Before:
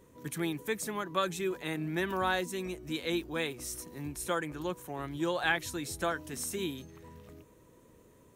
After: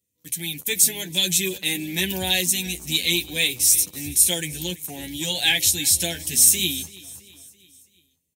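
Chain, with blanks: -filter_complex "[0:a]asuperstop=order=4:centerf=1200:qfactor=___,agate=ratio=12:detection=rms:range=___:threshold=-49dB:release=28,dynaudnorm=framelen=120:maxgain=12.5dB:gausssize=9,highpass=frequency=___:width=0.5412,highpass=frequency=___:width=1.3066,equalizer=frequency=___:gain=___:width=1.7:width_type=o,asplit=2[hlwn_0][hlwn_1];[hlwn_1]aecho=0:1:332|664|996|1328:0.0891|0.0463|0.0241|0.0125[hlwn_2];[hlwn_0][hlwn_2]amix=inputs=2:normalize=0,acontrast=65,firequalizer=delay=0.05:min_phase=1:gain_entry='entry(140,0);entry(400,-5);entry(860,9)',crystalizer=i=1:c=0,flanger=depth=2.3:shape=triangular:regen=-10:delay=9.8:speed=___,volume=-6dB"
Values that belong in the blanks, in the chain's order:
0.59, -19dB, 53, 53, 630, -6.5, 0.55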